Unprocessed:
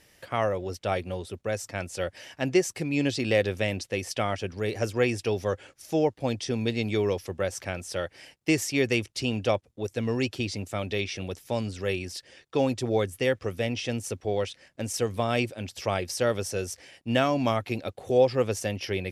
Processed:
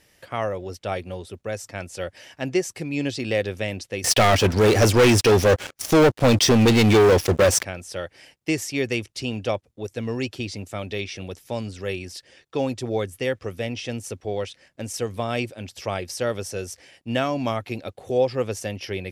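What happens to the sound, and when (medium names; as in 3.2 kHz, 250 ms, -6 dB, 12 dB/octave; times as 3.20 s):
4.04–7.63 s: waveshaping leveller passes 5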